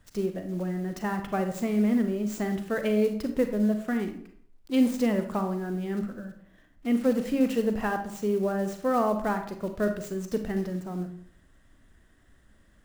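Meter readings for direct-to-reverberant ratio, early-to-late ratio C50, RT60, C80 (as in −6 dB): 6.5 dB, 9.0 dB, 0.60 s, 12.5 dB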